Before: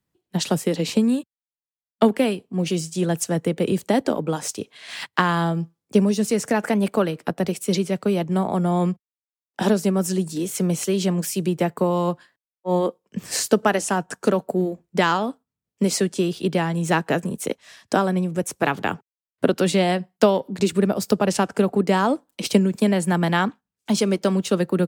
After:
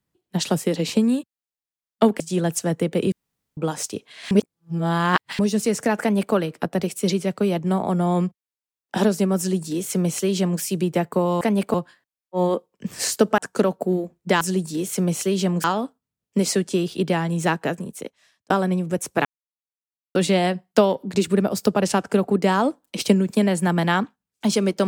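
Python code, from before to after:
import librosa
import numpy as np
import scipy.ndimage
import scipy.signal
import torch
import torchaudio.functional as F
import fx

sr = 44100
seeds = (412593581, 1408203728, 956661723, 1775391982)

y = fx.edit(x, sr, fx.cut(start_s=2.2, length_s=0.65),
    fx.room_tone_fill(start_s=3.77, length_s=0.45),
    fx.reverse_span(start_s=4.96, length_s=1.08),
    fx.duplicate(start_s=6.66, length_s=0.33, to_s=12.06),
    fx.duplicate(start_s=10.03, length_s=1.23, to_s=15.09),
    fx.cut(start_s=13.7, length_s=0.36),
    fx.fade_out_span(start_s=16.81, length_s=1.14),
    fx.silence(start_s=18.7, length_s=0.9), tone=tone)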